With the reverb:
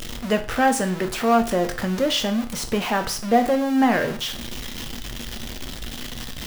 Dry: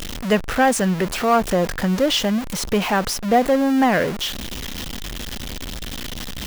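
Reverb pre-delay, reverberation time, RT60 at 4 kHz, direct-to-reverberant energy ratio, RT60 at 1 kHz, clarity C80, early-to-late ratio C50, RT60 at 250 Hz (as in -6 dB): 8 ms, 0.45 s, 0.40 s, 6.0 dB, 0.45 s, 17.5 dB, 13.5 dB, 0.45 s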